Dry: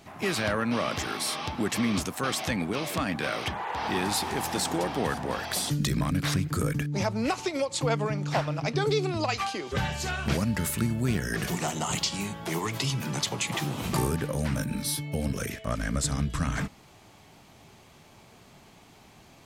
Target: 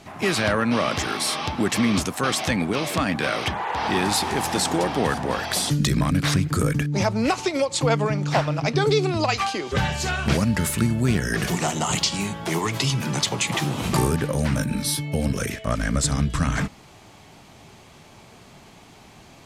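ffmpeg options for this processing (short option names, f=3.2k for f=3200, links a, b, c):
-af "lowpass=12k,volume=6dB"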